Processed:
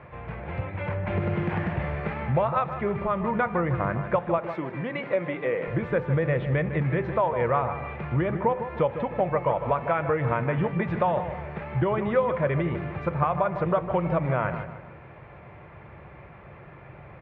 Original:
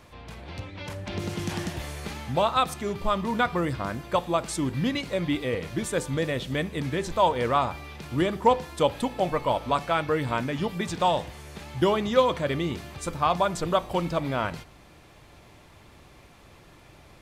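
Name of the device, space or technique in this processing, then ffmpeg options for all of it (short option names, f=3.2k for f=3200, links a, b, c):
bass amplifier: -filter_complex "[0:a]acompressor=threshold=-28dB:ratio=5,highpass=64,equalizer=f=140:t=q:w=4:g=5,equalizer=f=270:t=q:w=4:g=-10,equalizer=f=540:t=q:w=4:g=3,lowpass=f=2k:w=0.5412,lowpass=f=2k:w=1.3066,asettb=1/sr,asplit=3[a][b][c];[a]atrim=end=4.384[d];[b]atrim=start=4.38:end=5.68,asetpts=PTS-STARTPTS,afade=t=in:d=0.004:c=qsin,afade=t=out:st=1.296:d=0.004:c=qsin,highpass=270[e];[c]atrim=start=5.676[f];[d][e]acrossfade=d=0.004:c1=hsin:c2=qsin[g];[g][f]acrossfade=d=0.004:c1=qsin:c2=hsin,equalizer=f=2.3k:t=o:w=0.6:g=4,asplit=2[h][i];[i]adelay=155,lowpass=f=2.3k:p=1,volume=-9.5dB,asplit=2[j][k];[k]adelay=155,lowpass=f=2.3k:p=1,volume=0.42,asplit=2[l][m];[m]adelay=155,lowpass=f=2.3k:p=1,volume=0.42,asplit=2[n][o];[o]adelay=155,lowpass=f=2.3k:p=1,volume=0.42,asplit=2[p][q];[q]adelay=155,lowpass=f=2.3k:p=1,volume=0.42[r];[h][j][l][n][p][r]amix=inputs=6:normalize=0,volume=6dB"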